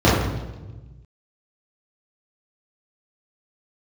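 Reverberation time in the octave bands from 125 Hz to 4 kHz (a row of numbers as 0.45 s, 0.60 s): 1.9 s, 1.5 s, 1.3 s, 1.0 s, 0.90 s, 0.95 s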